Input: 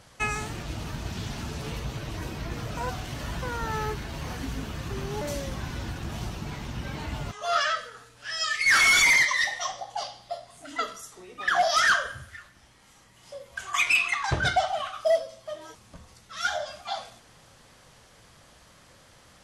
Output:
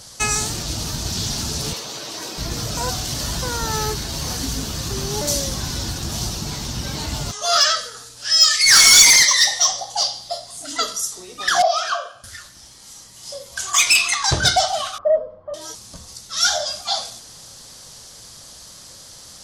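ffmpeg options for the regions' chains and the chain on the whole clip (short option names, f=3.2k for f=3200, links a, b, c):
-filter_complex "[0:a]asettb=1/sr,asplit=3[a][b][c];[a]atrim=end=1.734[d];[b]atrim=start=1.73:end=2.38,asetpts=PTS-STARTPTS,afade=t=in:d=0.004:c=qsin,afade=t=out:st=0.646:d=0.004:c=qsin,highpass=370,equalizer=f=14k:w=0.35:g=-7[e];[c]atrim=start=2.376[f];[d][e]acrossfade=d=0.004:c1=hsin:c2=qsin[g];[g][f]acrossfade=d=0.004:c1=qsin:c2=hsin,asettb=1/sr,asplit=3[h][i][j];[h]atrim=end=11.624[k];[i]atrim=start=11.62:end=12.24,asetpts=PTS-STARTPTS,afade=t=in:d=0.004:c=qsin,afade=t=out:st=0.616:d=0.004:c=qsin,acontrast=77,asplit=3[l][m][n];[l]bandpass=f=730:t=q:w=8,volume=0dB[o];[m]bandpass=f=1.09k:t=q:w=8,volume=-6dB[p];[n]bandpass=f=2.44k:t=q:w=8,volume=-9dB[q];[o][p][q]amix=inputs=3:normalize=0,asplit=2[r][s];[s]adelay=19,volume=-13dB[t];[r][t]amix=inputs=2:normalize=0,atrim=end_sample=27342[u];[j]atrim=start=12.236[v];[k][u]acrossfade=d=0.004:c1=hsin:c2=qsin[w];[w][v]acrossfade=d=0.004:c1=qsin:c2=hsin,asettb=1/sr,asplit=3[x][y][z];[x]atrim=end=14.984[aa];[y]atrim=start=14.98:end=15.54,asetpts=PTS-STARTPTS,afade=t=in:d=0.004:c=qsin,afade=t=out:st=0.556:d=0.004:c=qsin,lowpass=f=1.3k:w=0.5412,lowpass=f=1.3k:w=1.3066,afreqshift=-28[ab];[z]atrim=start=15.536[ac];[aa][ab]acrossfade=d=0.004:c1=hsin:c2=qsin[ad];[ad][ac]acrossfade=d=0.004:c1=qsin:c2=hsin,highshelf=f=3.4k:t=q:w=1.5:g=11.5,acontrast=89,volume=-1dB"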